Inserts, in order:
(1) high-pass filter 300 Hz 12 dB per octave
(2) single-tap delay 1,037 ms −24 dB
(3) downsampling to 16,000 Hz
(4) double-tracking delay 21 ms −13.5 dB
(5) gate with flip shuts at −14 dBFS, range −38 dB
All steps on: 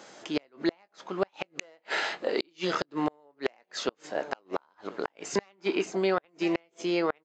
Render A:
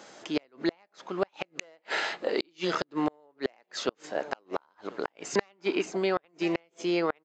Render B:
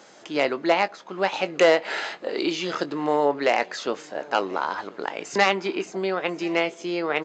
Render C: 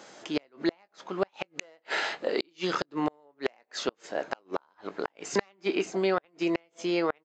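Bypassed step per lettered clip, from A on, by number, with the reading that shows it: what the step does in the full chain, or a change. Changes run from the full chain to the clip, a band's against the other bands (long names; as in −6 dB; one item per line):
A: 4, change in crest factor +2.0 dB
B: 5, change in crest factor −2.5 dB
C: 2, change in crest factor +1.5 dB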